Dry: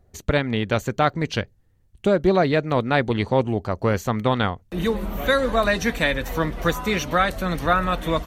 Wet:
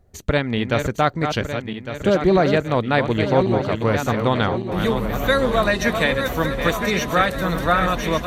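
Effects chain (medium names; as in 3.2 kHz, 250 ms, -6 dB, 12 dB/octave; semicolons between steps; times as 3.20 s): backward echo that repeats 578 ms, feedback 65%, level -6.5 dB; trim +1 dB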